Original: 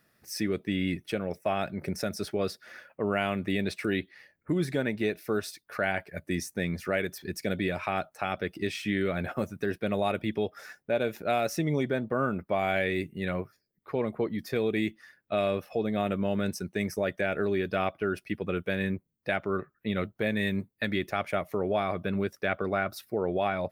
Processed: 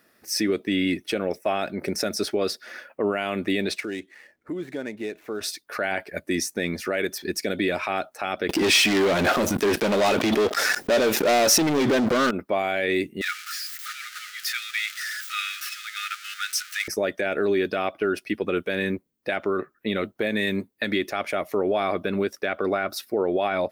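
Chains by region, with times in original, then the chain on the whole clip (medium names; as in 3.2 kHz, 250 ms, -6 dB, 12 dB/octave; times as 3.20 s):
3.80–5.41 s: median filter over 9 samples + compression 1.5:1, threshold -54 dBFS
8.49–12.31 s: waveshaping leveller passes 5 + swell ahead of each attack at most 39 dB/s
13.21–16.88 s: jump at every zero crossing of -35 dBFS + brick-wall FIR high-pass 1.2 kHz
whole clip: resonant low shelf 200 Hz -8.5 dB, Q 1.5; peak limiter -21.5 dBFS; dynamic bell 5.1 kHz, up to +4 dB, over -52 dBFS, Q 0.77; trim +7 dB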